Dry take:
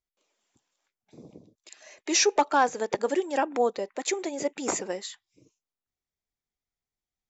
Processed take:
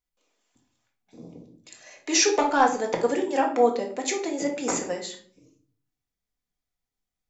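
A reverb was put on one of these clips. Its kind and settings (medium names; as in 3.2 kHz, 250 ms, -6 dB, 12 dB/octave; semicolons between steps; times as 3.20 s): simulated room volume 540 m³, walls furnished, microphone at 1.9 m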